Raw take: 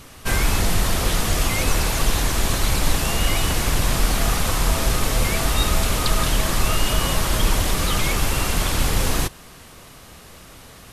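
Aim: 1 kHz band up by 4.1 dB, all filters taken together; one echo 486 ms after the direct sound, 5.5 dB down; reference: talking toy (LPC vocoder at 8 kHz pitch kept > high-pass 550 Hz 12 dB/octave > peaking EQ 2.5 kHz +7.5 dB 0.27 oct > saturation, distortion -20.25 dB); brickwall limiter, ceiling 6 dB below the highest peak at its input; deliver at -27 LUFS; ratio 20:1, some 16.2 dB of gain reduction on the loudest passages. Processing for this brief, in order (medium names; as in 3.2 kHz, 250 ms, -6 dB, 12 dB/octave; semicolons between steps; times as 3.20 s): peaking EQ 1 kHz +5.5 dB; compression 20:1, threshold -29 dBFS; peak limiter -25 dBFS; delay 486 ms -5.5 dB; LPC vocoder at 8 kHz pitch kept; high-pass 550 Hz 12 dB/octave; peaking EQ 2.5 kHz +7.5 dB 0.27 oct; saturation -27 dBFS; trim +11 dB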